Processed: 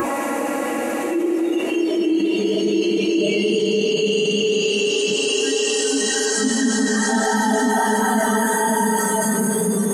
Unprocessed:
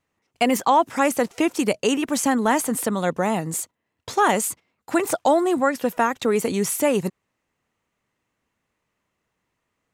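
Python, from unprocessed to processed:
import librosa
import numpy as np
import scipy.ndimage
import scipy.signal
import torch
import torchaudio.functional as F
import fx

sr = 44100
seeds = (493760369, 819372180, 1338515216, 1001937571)

y = fx.env_lowpass(x, sr, base_hz=1100.0, full_db=-17.5)
y = fx.paulstretch(y, sr, seeds[0], factor=5.7, window_s=1.0, from_s=1.08)
y = fx.noise_reduce_blind(y, sr, reduce_db=19)
y = fx.echo_wet_bandpass(y, sr, ms=102, feedback_pct=73, hz=770.0, wet_db=-9.0)
y = fx.env_flatten(y, sr, amount_pct=70)
y = F.gain(torch.from_numpy(y), 3.0).numpy()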